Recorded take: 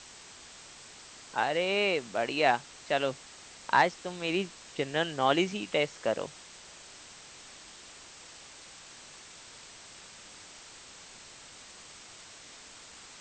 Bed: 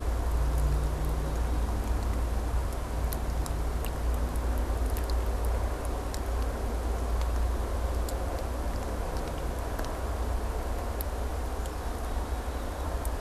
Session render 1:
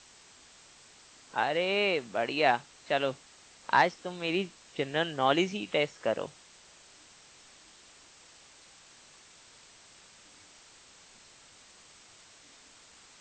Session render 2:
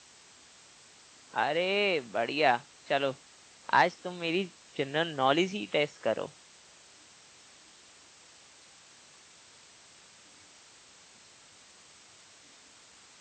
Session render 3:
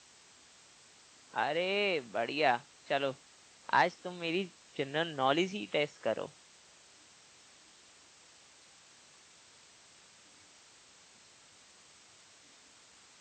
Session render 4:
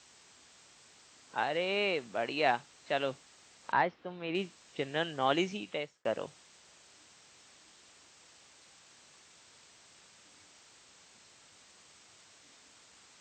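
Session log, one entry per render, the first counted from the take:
noise print and reduce 6 dB
HPF 65 Hz
gain -3.5 dB
3.72–4.35 air absorption 320 m; 5.55–6.05 fade out

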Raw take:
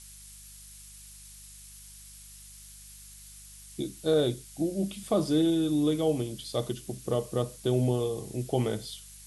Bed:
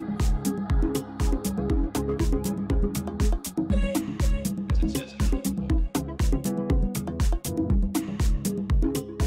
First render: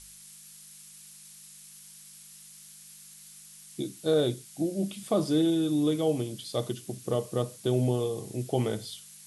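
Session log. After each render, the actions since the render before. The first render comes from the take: de-hum 50 Hz, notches 2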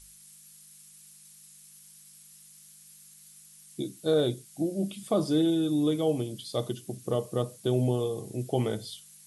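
denoiser 6 dB, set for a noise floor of -51 dBFS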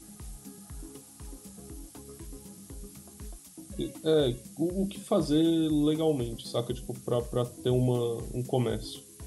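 add bed -20.5 dB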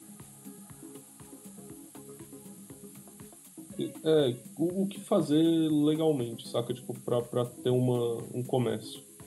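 HPF 120 Hz 24 dB/oct; bell 5500 Hz -13 dB 0.42 oct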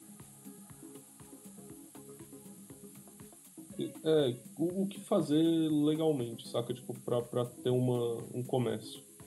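gain -3.5 dB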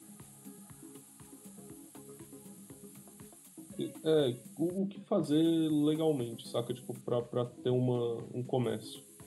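0.71–1.41 bell 550 Hz -7.5 dB 0.54 oct; 4.78–5.24 tape spacing loss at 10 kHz 23 dB; 7.01–8.64 air absorption 71 m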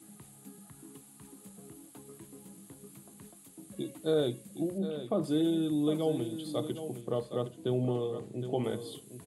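echo 0.764 s -10.5 dB

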